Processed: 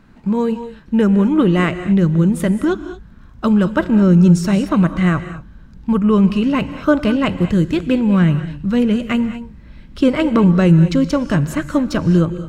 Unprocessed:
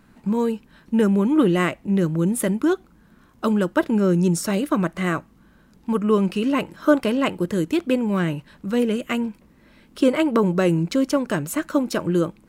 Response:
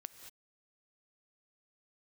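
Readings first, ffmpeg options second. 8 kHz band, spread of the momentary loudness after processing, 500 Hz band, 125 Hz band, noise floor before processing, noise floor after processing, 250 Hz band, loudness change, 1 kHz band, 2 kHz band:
can't be measured, 9 LU, +2.0 dB, +10.0 dB, −55 dBFS, −42 dBFS, +6.5 dB, +6.0 dB, +3.0 dB, +3.5 dB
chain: -filter_complex "[0:a]asubboost=boost=4.5:cutoff=160,asplit=2[link_01][link_02];[1:a]atrim=start_sample=2205,lowpass=6800,lowshelf=frequency=120:gain=7[link_03];[link_02][link_03]afir=irnorm=-1:irlink=0,volume=11dB[link_04];[link_01][link_04]amix=inputs=2:normalize=0,volume=-5.5dB"

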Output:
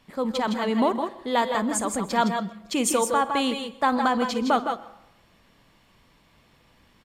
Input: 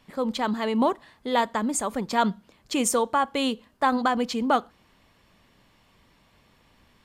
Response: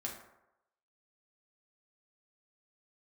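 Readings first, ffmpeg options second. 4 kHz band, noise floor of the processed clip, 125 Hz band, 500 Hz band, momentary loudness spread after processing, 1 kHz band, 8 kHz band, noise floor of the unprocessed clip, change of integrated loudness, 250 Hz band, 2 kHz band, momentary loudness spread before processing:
+1.0 dB, −60 dBFS, +1.5 dB, +1.5 dB, 6 LU, +1.0 dB, +1.0 dB, −62 dBFS, +1.0 dB, +1.0 dB, +1.5 dB, 5 LU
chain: -filter_complex "[0:a]aecho=1:1:54|159|165:0.126|0.335|0.398,asplit=2[link_01][link_02];[1:a]atrim=start_sample=2205,adelay=126[link_03];[link_02][link_03]afir=irnorm=-1:irlink=0,volume=-17dB[link_04];[link_01][link_04]amix=inputs=2:normalize=0"

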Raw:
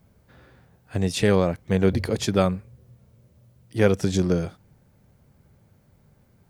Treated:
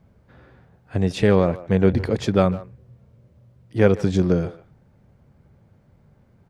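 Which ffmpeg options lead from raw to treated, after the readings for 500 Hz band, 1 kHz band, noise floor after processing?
+3.0 dB, +2.0 dB, −58 dBFS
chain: -filter_complex "[0:a]aemphasis=mode=reproduction:type=75kf,asplit=2[link_01][link_02];[link_02]adelay=150,highpass=300,lowpass=3400,asoftclip=type=hard:threshold=-16dB,volume=-16dB[link_03];[link_01][link_03]amix=inputs=2:normalize=0,volume=3dB"

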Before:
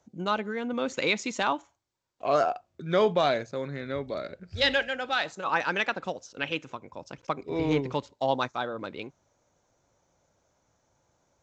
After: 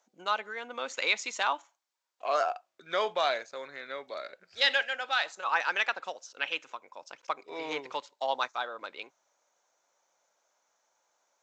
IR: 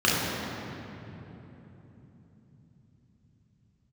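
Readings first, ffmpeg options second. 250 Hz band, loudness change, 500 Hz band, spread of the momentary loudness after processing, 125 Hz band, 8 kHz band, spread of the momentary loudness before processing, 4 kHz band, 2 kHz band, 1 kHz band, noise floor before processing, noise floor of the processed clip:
−17.5 dB, −2.5 dB, −7.0 dB, 15 LU, below −25 dB, can't be measured, 13 LU, 0.0 dB, 0.0 dB, −2.0 dB, −75 dBFS, −80 dBFS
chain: -af "highpass=770"

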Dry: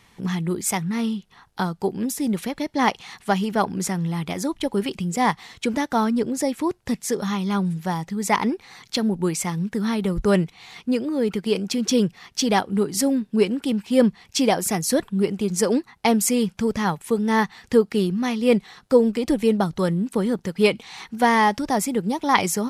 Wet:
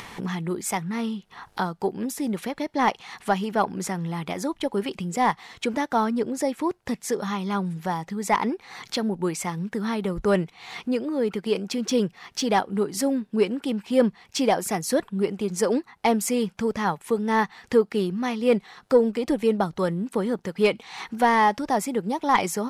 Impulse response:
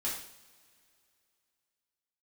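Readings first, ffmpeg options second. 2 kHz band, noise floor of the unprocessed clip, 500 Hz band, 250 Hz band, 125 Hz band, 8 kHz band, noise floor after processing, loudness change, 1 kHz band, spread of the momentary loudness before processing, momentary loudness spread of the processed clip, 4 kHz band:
−2.5 dB, −57 dBFS, −1.5 dB, −4.0 dB, −5.0 dB, −5.5 dB, −59 dBFS, −2.5 dB, −0.5 dB, 7 LU, 7 LU, −4.0 dB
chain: -filter_complex "[0:a]asplit=2[link_01][link_02];[link_02]highpass=frequency=720:poles=1,volume=11dB,asoftclip=type=tanh:threshold=-1dB[link_03];[link_01][link_03]amix=inputs=2:normalize=0,lowpass=frequency=1000:poles=1,volume=-6dB,crystalizer=i=1.5:c=0,acompressor=mode=upward:threshold=-24dB:ratio=2.5,volume=-2.5dB"

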